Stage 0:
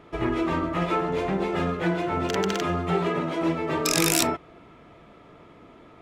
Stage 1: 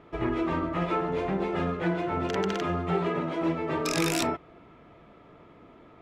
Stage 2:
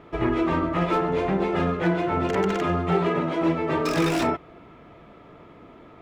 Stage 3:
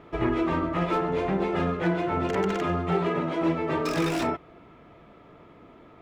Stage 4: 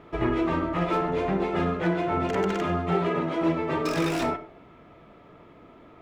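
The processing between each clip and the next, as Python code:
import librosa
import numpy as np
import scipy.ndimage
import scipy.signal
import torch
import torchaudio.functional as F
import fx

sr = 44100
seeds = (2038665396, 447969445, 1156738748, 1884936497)

y1 = fx.lowpass(x, sr, hz=3200.0, slope=6)
y1 = y1 * librosa.db_to_amplitude(-2.5)
y2 = fx.slew_limit(y1, sr, full_power_hz=74.0)
y2 = y2 * librosa.db_to_amplitude(5.0)
y3 = fx.rider(y2, sr, range_db=10, speed_s=0.5)
y3 = y3 * librosa.db_to_amplitude(-2.5)
y4 = fx.rev_freeverb(y3, sr, rt60_s=0.49, hf_ratio=0.45, predelay_ms=15, drr_db=11.5)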